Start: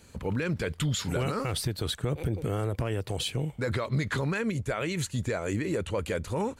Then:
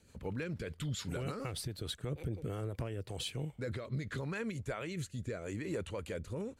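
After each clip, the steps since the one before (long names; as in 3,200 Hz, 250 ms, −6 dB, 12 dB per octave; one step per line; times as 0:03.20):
rotating-speaker cabinet horn 6.7 Hz, later 0.8 Hz, at 0:02.23
level −7.5 dB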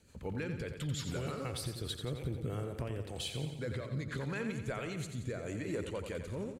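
repeating echo 88 ms, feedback 58%, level −8 dB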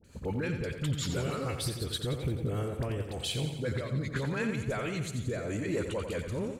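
all-pass dispersion highs, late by 44 ms, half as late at 1,200 Hz
level +5.5 dB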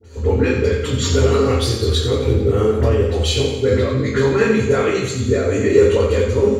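convolution reverb RT60 0.50 s, pre-delay 3 ms, DRR −7.5 dB
level −2.5 dB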